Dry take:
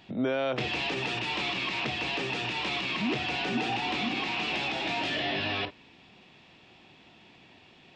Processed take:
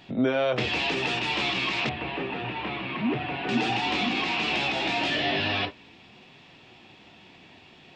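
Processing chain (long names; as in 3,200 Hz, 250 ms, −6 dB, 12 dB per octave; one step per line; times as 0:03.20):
flanger 0.31 Hz, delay 6.8 ms, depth 8.4 ms, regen −49%
0:01.89–0:03.49: high-frequency loss of the air 490 metres
level +8 dB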